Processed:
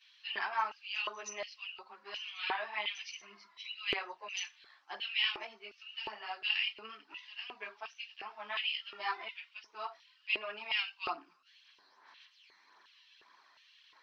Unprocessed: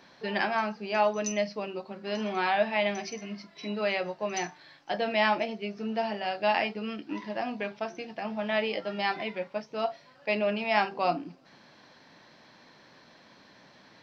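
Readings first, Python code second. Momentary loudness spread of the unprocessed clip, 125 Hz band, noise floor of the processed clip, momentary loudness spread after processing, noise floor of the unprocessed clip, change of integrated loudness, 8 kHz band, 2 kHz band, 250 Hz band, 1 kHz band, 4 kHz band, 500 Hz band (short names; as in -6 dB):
11 LU, under -20 dB, -67 dBFS, 15 LU, -57 dBFS, -7.0 dB, n/a, -5.0 dB, -25.0 dB, -10.5 dB, +1.0 dB, -19.5 dB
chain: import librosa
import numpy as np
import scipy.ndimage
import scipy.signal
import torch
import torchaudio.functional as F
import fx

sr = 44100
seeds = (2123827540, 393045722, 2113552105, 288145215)

y = fx.chorus_voices(x, sr, voices=4, hz=0.93, base_ms=12, depth_ms=3.0, mix_pct=70)
y = fx.low_shelf_res(y, sr, hz=720.0, db=-13.5, q=3.0)
y = fx.filter_lfo_highpass(y, sr, shape='square', hz=1.4, low_hz=400.0, high_hz=2900.0, q=5.0)
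y = y * librosa.db_to_amplitude(-7.5)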